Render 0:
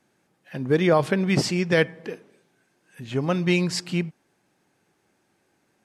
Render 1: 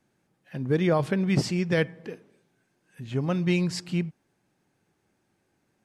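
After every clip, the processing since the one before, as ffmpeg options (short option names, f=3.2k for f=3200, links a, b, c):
-af "lowshelf=f=170:g=10,volume=-6dB"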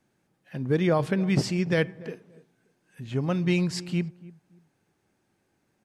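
-filter_complex "[0:a]asplit=2[a][b];[b]adelay=288,lowpass=f=970:p=1,volume=-19dB,asplit=2[c][d];[d]adelay=288,lowpass=f=970:p=1,volume=0.26[e];[a][c][e]amix=inputs=3:normalize=0"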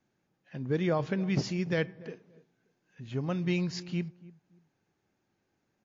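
-af "volume=-5dB" -ar 16000 -c:a libmp3lame -b:a 40k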